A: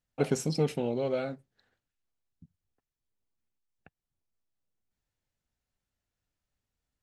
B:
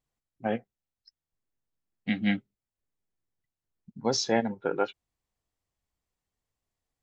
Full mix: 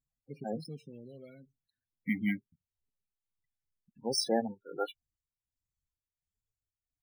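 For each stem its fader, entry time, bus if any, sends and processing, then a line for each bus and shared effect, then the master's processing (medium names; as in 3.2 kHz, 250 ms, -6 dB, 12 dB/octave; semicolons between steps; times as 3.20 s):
-13.0 dB, 0.10 s, no send, peaking EQ 800 Hz -13.5 dB 1.9 oct
-3.0 dB, 0.00 s, no send, tremolo of two beating tones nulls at 1.4 Hz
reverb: none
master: treble shelf 2.8 kHz +10 dB; loudest bins only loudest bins 16; decimation joined by straight lines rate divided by 3×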